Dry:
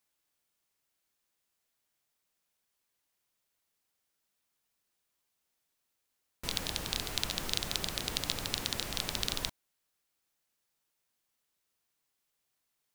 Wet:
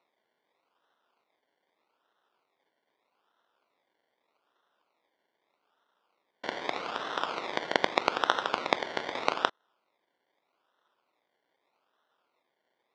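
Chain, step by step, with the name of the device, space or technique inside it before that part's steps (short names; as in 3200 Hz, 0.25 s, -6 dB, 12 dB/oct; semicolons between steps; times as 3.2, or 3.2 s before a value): circuit-bent sampling toy (decimation with a swept rate 27×, swing 60% 0.81 Hz; speaker cabinet 450–5200 Hz, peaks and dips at 990 Hz +3 dB, 1400 Hz +7 dB, 2100 Hz +4 dB, 3600 Hz +6 dB); gain +5.5 dB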